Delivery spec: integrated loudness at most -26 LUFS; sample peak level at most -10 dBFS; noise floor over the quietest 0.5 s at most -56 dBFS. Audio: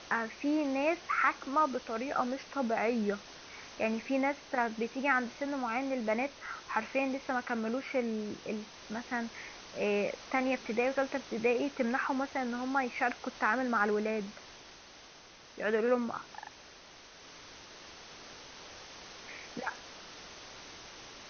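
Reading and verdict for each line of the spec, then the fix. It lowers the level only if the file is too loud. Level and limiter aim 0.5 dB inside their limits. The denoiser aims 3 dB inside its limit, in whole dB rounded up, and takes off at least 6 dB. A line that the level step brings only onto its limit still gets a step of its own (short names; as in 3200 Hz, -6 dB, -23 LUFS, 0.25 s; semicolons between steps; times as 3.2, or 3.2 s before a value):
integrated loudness -33.0 LUFS: OK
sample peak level -15.0 dBFS: OK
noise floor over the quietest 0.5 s -55 dBFS: fail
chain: denoiser 6 dB, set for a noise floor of -55 dBFS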